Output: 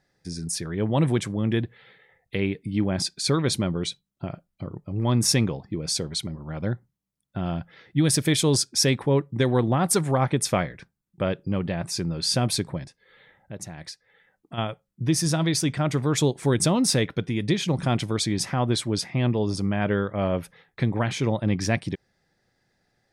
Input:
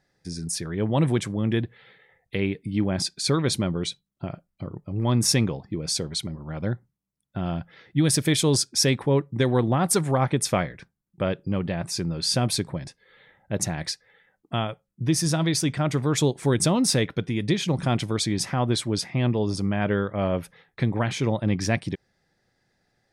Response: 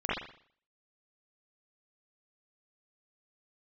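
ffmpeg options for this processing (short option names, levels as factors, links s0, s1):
-filter_complex "[0:a]asplit=3[s0][s1][s2];[s0]afade=t=out:st=12.84:d=0.02[s3];[s1]acompressor=threshold=0.00708:ratio=2,afade=t=in:st=12.84:d=0.02,afade=t=out:st=14.57:d=0.02[s4];[s2]afade=t=in:st=14.57:d=0.02[s5];[s3][s4][s5]amix=inputs=3:normalize=0"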